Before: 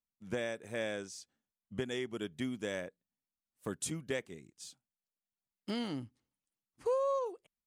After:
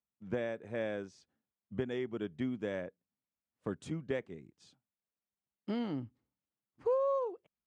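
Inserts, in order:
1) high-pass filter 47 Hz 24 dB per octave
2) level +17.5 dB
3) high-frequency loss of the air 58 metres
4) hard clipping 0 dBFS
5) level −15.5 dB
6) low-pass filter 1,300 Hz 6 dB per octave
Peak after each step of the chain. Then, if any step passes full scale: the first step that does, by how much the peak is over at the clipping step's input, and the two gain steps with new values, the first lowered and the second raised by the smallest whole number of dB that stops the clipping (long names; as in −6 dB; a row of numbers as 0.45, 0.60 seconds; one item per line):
−22.0, −4.5, −5.0, −5.0, −20.5, −21.5 dBFS
no step passes full scale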